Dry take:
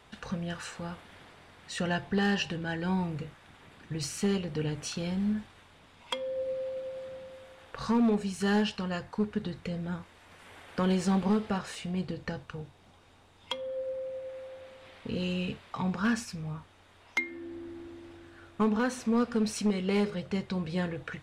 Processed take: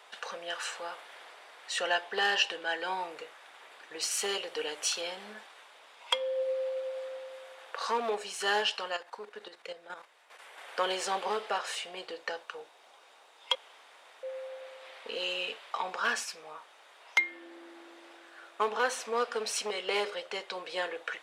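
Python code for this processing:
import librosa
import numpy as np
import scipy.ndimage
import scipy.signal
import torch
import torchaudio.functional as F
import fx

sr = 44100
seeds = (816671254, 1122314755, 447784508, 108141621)

y = fx.high_shelf(x, sr, hz=5900.0, db=6.5, at=(4.11, 5.01))
y = fx.level_steps(y, sr, step_db=11, at=(8.9, 10.58))
y = fx.edit(y, sr, fx.room_tone_fill(start_s=13.55, length_s=0.68), tone=tone)
y = scipy.signal.sosfilt(scipy.signal.butter(4, 490.0, 'highpass', fs=sr, output='sos'), y)
y = fx.dynamic_eq(y, sr, hz=3100.0, q=4.7, threshold_db=-57.0, ratio=4.0, max_db=4)
y = y * 10.0 ** (4.0 / 20.0)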